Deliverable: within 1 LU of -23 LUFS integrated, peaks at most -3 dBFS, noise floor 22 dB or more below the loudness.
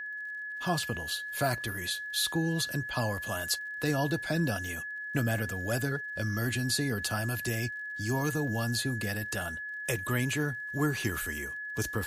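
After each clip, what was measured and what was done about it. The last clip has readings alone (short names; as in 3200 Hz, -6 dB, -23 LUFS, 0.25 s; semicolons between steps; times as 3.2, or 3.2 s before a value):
ticks 55/s; steady tone 1700 Hz; tone level -36 dBFS; loudness -31.5 LUFS; peak -15.5 dBFS; loudness target -23.0 LUFS
-> de-click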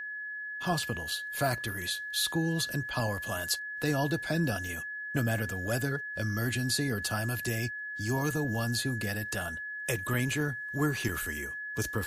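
ticks 0.50/s; steady tone 1700 Hz; tone level -36 dBFS
-> notch 1700 Hz, Q 30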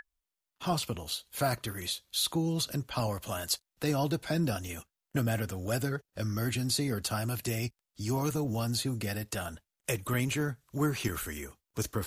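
steady tone none; loudness -33.0 LUFS; peak -16.5 dBFS; loudness target -23.0 LUFS
-> gain +10 dB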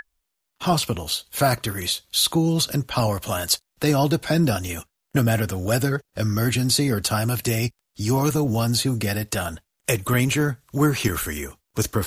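loudness -23.0 LUFS; peak -6.5 dBFS; noise floor -79 dBFS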